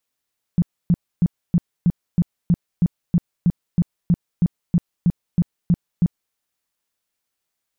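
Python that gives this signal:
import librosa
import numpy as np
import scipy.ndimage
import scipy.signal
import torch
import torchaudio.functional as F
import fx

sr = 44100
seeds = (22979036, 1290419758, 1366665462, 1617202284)

y = fx.tone_burst(sr, hz=173.0, cycles=7, every_s=0.32, bursts=18, level_db=-11.5)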